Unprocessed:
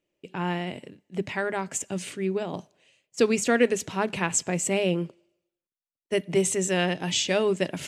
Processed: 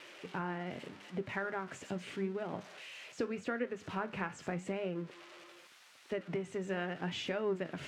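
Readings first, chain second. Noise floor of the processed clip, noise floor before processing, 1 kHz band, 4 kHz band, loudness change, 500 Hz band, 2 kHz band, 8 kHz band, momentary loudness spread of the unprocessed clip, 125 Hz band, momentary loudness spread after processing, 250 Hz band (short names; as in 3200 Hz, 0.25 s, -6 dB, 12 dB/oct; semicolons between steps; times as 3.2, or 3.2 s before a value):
-60 dBFS, under -85 dBFS, -9.5 dB, -14.5 dB, -13.0 dB, -12.5 dB, -10.5 dB, -26.5 dB, 13 LU, -10.5 dB, 11 LU, -11.5 dB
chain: switching spikes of -23.5 dBFS; LPF 2000 Hz 12 dB/oct; dynamic EQ 1400 Hz, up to +7 dB, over -46 dBFS, Q 2.4; compressor 5:1, threshold -31 dBFS, peak gain reduction 14.5 dB; flange 0.82 Hz, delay 7.5 ms, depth 8.2 ms, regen +73%; gain +1 dB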